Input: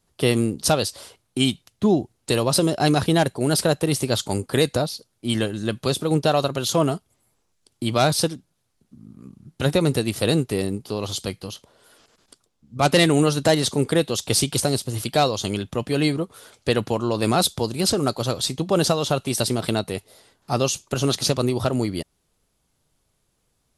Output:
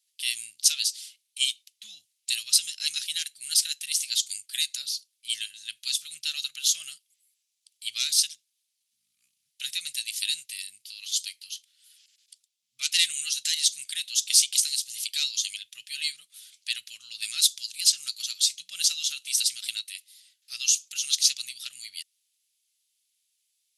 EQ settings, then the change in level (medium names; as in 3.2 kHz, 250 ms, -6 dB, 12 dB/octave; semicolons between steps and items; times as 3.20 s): inverse Chebyshev high-pass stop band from 1 kHz, stop band 50 dB; dynamic bell 6.4 kHz, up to +6 dB, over -42 dBFS, Q 1.8; 0.0 dB